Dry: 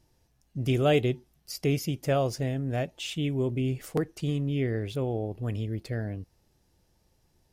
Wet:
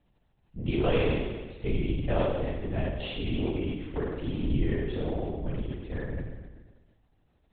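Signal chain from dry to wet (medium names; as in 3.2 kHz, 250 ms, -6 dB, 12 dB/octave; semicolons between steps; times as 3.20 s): flutter echo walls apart 8.5 m, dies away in 1.4 s; LPC vocoder at 8 kHz whisper; trim -5 dB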